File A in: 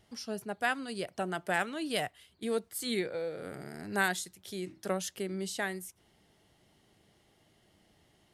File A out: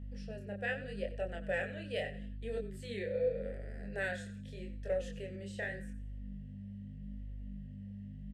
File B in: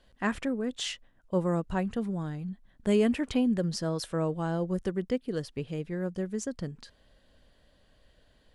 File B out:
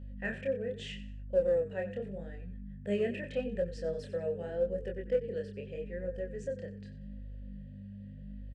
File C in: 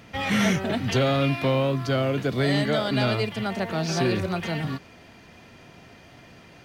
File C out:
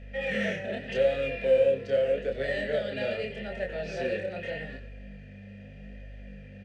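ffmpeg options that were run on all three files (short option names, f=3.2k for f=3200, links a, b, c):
-filter_complex "[0:a]asplit=3[a][b][c];[a]bandpass=f=530:t=q:w=8,volume=0dB[d];[b]bandpass=f=1.84k:t=q:w=8,volume=-6dB[e];[c]bandpass=f=2.48k:t=q:w=8,volume=-9dB[f];[d][e][f]amix=inputs=3:normalize=0,asplit=4[g][h][i][j];[h]adelay=92,afreqshift=-36,volume=-14dB[k];[i]adelay=184,afreqshift=-72,volume=-23.1dB[l];[j]adelay=276,afreqshift=-108,volume=-32.2dB[m];[g][k][l][m]amix=inputs=4:normalize=0,asplit=2[n][o];[o]asoftclip=type=hard:threshold=-32dB,volume=-12dB[p];[n][p]amix=inputs=2:normalize=0,aeval=exprs='val(0)+0.00447*(sin(2*PI*50*n/s)+sin(2*PI*2*50*n/s)/2+sin(2*PI*3*50*n/s)/3+sin(2*PI*4*50*n/s)/4+sin(2*PI*5*50*n/s)/5)':c=same,flanger=delay=22.5:depth=7.6:speed=0.82,equalizer=f=200:t=o:w=0.33:g=8,equalizer=f=315:t=o:w=0.33:g=-8,equalizer=f=8k:t=o:w=0.33:g=8,volume=6.5dB"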